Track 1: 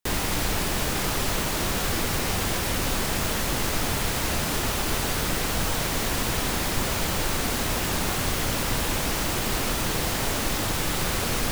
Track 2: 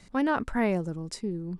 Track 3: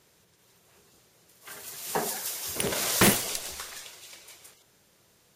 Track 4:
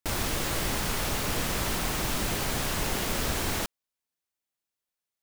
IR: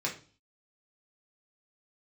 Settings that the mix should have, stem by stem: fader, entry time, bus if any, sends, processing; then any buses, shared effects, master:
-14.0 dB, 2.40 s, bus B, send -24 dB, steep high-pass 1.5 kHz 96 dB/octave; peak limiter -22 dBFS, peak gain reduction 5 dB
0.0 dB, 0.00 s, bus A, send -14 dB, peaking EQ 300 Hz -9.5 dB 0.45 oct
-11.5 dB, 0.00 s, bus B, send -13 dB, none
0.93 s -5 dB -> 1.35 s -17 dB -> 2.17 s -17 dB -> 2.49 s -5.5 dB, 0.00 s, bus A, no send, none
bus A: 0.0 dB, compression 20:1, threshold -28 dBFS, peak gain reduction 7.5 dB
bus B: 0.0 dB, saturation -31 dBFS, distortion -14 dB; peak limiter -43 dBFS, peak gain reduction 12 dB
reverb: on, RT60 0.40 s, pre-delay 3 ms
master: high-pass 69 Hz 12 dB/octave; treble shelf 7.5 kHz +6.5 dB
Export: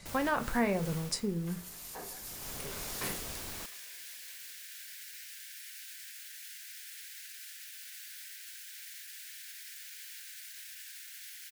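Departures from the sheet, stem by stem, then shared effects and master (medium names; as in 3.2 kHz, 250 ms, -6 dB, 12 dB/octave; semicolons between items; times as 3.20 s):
stem 1: entry 2.40 s -> 2.95 s; stem 4 -5.0 dB -> -15.5 dB; master: missing high-pass 69 Hz 12 dB/octave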